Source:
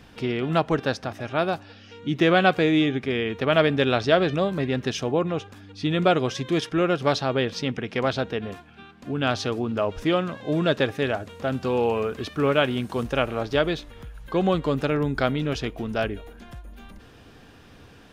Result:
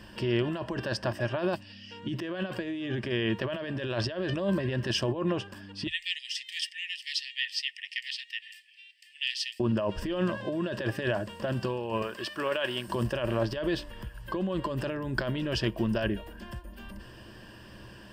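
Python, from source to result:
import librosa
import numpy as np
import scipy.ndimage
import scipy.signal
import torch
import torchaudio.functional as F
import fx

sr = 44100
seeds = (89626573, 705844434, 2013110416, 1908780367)

y = fx.spec_box(x, sr, start_s=1.55, length_s=0.36, low_hz=290.0, high_hz=1800.0, gain_db=-12)
y = fx.cheby1_highpass(y, sr, hz=1800.0, order=10, at=(5.87, 9.6))
y = fx.highpass(y, sr, hz=770.0, slope=6, at=(12.02, 12.88))
y = fx.over_compress(y, sr, threshold_db=-27.0, ratio=-1.0)
y = fx.ripple_eq(y, sr, per_octave=1.3, db=11)
y = F.gain(torch.from_numpy(y), -4.0).numpy()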